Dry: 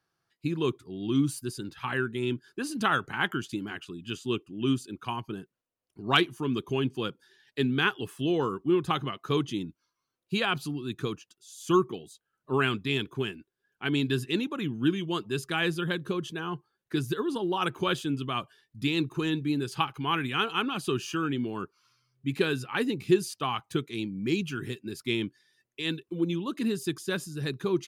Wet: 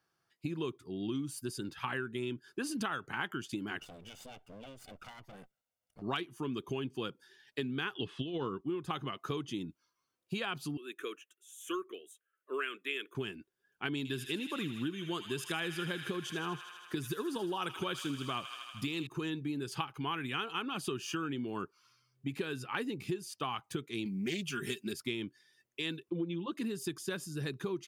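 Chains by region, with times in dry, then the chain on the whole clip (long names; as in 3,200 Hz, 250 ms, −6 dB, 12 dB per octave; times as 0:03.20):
0:03.79–0:06.02: lower of the sound and its delayed copy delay 1.4 ms + downward compressor 12 to 1, threshold −45 dBFS
0:07.95–0:08.61: low-pass with resonance 3,700 Hz, resonance Q 3.5 + low-shelf EQ 440 Hz +6.5 dB + compressor whose output falls as the input rises −25 dBFS, ratio −0.5
0:10.77–0:13.15: high-pass filter 400 Hz 24 dB per octave + phaser with its sweep stopped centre 2,000 Hz, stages 4
0:13.97–0:19.07: high-shelf EQ 5,600 Hz +5 dB + delay with a high-pass on its return 79 ms, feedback 79%, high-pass 1,500 Hz, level −10 dB
0:24.05–0:24.93: high-shelf EQ 2,800 Hz +11.5 dB + comb filter 5 ms, depth 58% + highs frequency-modulated by the lows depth 0.13 ms
0:26.10–0:26.52: low-pass filter 4,300 Hz 24 dB per octave + comb filter 5.8 ms, depth 95%
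whole clip: downward compressor 10 to 1, threshold −32 dBFS; low-shelf EQ 130 Hz −5 dB; notch filter 4,000 Hz, Q 17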